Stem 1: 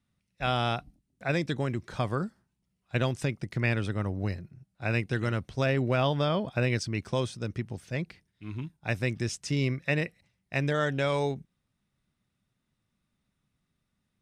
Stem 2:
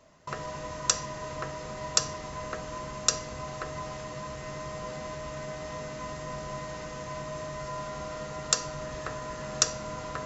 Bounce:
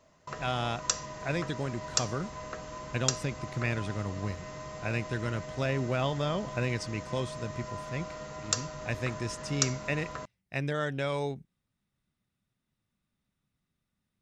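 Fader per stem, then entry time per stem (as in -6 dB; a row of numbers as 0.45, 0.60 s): -4.0, -4.0 dB; 0.00, 0.00 s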